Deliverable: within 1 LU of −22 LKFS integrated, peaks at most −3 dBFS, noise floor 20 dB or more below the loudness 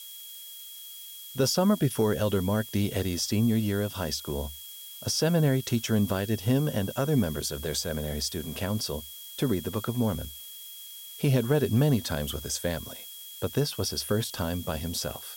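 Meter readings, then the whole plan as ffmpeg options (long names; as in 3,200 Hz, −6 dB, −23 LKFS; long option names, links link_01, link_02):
interfering tone 3,300 Hz; level of the tone −46 dBFS; background noise floor −44 dBFS; target noise floor −48 dBFS; integrated loudness −28.0 LKFS; sample peak −12.5 dBFS; target loudness −22.0 LKFS
→ -af "bandreject=frequency=3300:width=30"
-af "afftdn=noise_reduction=6:noise_floor=-44"
-af "volume=6dB"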